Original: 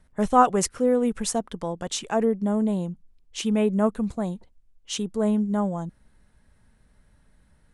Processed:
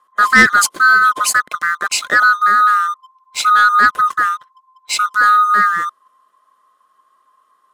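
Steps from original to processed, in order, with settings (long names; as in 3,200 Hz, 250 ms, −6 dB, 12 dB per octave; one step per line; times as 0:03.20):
neighbouring bands swapped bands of 1,000 Hz
high-pass filter 230 Hz 12 dB per octave
leveller curve on the samples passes 2
level +4.5 dB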